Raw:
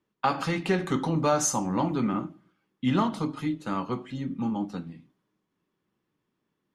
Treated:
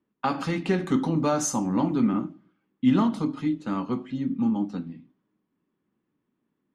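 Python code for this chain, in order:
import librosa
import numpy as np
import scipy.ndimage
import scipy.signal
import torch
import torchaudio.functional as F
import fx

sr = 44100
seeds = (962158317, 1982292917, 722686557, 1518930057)

y = fx.env_lowpass(x, sr, base_hz=2800.0, full_db=-23.5)
y = fx.peak_eq(y, sr, hz=250.0, db=8.5, octaves=0.8)
y = y * 10.0 ** (-2.0 / 20.0)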